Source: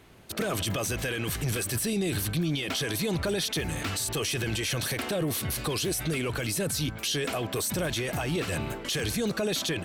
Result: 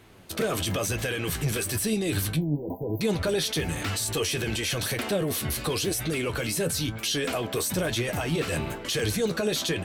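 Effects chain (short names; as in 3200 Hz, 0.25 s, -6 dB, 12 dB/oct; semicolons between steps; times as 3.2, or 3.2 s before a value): 2.36–3.01 brick-wall FIR band-stop 1000–14000 Hz; flange 1 Hz, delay 8.4 ms, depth 5.6 ms, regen +50%; dynamic EQ 470 Hz, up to +3 dB, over -45 dBFS, Q 4; gain +5.5 dB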